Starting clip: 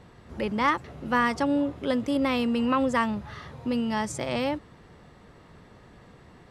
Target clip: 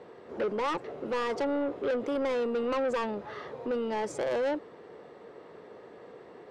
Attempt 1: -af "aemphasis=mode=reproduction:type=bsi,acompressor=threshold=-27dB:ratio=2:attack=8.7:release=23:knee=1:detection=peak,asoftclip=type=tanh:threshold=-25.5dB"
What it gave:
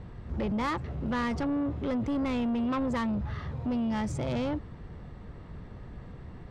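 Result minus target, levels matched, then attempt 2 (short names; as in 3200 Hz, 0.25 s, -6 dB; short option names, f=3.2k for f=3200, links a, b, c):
500 Hz band -8.0 dB
-af "aemphasis=mode=reproduction:type=bsi,acompressor=threshold=-27dB:ratio=2:attack=8.7:release=23:knee=1:detection=peak,highpass=f=440:t=q:w=2.8,asoftclip=type=tanh:threshold=-25.5dB"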